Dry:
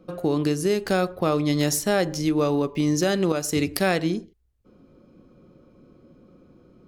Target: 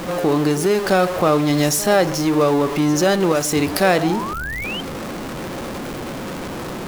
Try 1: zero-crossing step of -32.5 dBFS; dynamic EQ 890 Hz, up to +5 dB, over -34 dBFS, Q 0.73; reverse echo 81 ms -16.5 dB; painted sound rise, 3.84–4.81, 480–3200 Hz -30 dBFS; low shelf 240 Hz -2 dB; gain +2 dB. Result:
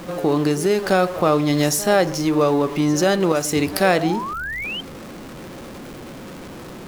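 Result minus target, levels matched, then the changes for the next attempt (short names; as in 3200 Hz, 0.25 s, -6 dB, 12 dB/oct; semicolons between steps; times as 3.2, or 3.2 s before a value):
zero-crossing step: distortion -6 dB
change: zero-crossing step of -25 dBFS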